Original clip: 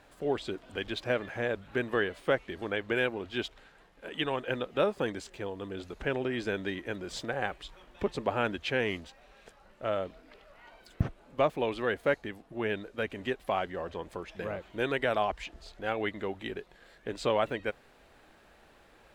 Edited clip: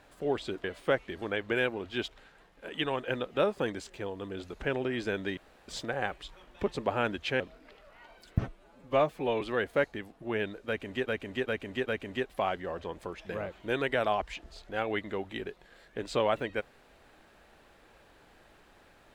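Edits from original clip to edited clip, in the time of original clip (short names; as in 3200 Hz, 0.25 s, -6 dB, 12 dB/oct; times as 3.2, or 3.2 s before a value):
0.64–2.04 cut
6.77–7.08 room tone
8.8–10.03 cut
11.05–11.71 stretch 1.5×
12.97–13.37 loop, 4 plays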